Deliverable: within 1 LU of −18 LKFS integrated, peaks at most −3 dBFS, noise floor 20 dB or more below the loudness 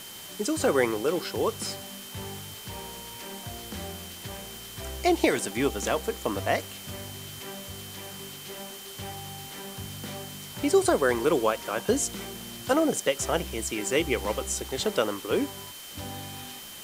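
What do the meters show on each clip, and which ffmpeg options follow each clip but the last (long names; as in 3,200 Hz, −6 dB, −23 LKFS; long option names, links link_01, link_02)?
interfering tone 3,100 Hz; level of the tone −46 dBFS; background noise floor −43 dBFS; target noise floor −50 dBFS; integrated loudness −29.5 LKFS; sample peak −8.0 dBFS; target loudness −18.0 LKFS
→ -af "bandreject=frequency=3100:width=30"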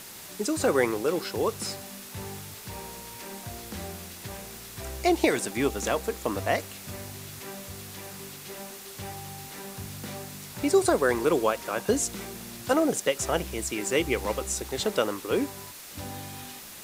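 interfering tone none found; background noise floor −44 dBFS; target noise floor −50 dBFS
→ -af "afftdn=noise_reduction=6:noise_floor=-44"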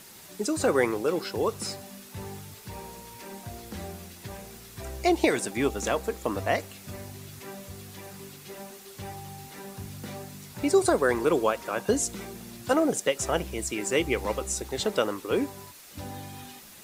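background noise floor −48 dBFS; integrated loudness −27.5 LKFS; sample peak −8.0 dBFS; target loudness −18.0 LKFS
→ -af "volume=9.5dB,alimiter=limit=-3dB:level=0:latency=1"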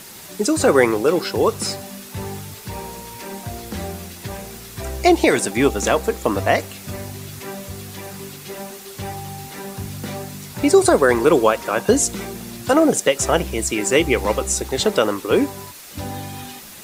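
integrated loudness −18.5 LKFS; sample peak −3.0 dBFS; background noise floor −39 dBFS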